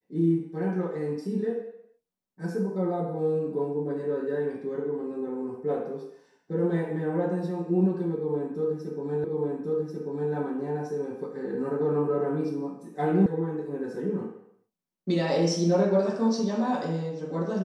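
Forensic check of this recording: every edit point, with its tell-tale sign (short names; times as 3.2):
9.24 repeat of the last 1.09 s
13.26 sound cut off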